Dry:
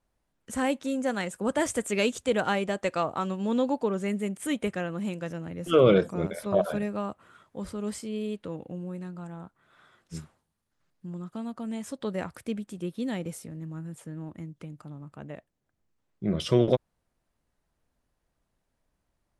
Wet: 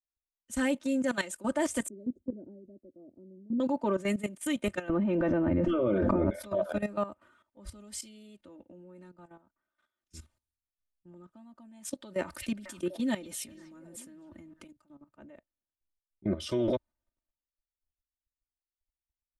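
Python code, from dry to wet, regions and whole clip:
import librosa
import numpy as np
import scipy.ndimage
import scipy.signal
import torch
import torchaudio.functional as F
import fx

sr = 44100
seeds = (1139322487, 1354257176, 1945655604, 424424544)

y = fx.chain(x, sr, fx.cheby2_lowpass(hz=1000.0, order=4, stop_db=50),
    fx.low_shelf(hz=110.0, db=-11.0), at=(1.88, 3.6))
y = fx.chain(y, sr, fx.spacing_loss(db_at_10k=41),
    fx.env_flatten(amount_pct=100), at=(4.89, 6.3))
y = fx.chain(y, sr, fx.echo_stepped(ms=246, hz=3600.0, octaves=-1.4, feedback_pct=70, wet_db=-8),
    fx.env_flatten(amount_pct=50), at=(12.16, 14.64))
y = y + 0.92 * np.pad(y, (int(3.3 * sr / 1000.0), 0))[:len(y)]
y = fx.level_steps(y, sr, step_db=14)
y = fx.band_widen(y, sr, depth_pct=70)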